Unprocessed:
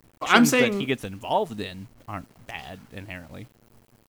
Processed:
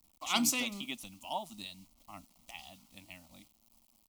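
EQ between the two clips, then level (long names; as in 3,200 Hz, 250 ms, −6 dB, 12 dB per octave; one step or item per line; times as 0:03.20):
guitar amp tone stack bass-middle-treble 5-5-5
phaser with its sweep stopped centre 440 Hz, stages 6
+4.0 dB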